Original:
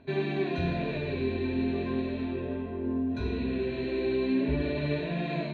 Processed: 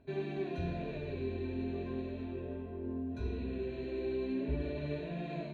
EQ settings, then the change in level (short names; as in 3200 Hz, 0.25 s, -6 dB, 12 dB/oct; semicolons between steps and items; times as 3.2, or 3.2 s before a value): graphic EQ 125/250/500/1000/2000/4000 Hz -6/-6/-3/-7/-8/-9 dB; -1.5 dB